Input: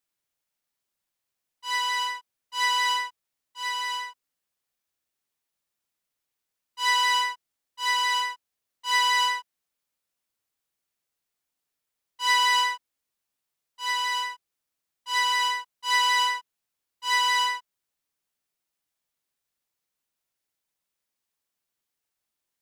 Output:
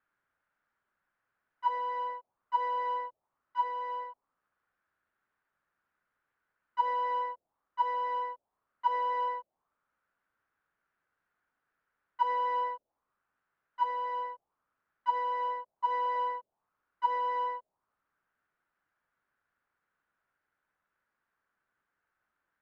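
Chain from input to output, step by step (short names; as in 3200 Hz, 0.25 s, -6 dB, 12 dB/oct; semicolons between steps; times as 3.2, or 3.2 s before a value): compressor 1.5:1, threshold -28 dBFS, peak gain reduction 4.5 dB; envelope low-pass 570–1500 Hz down, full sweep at -30.5 dBFS; gain +4 dB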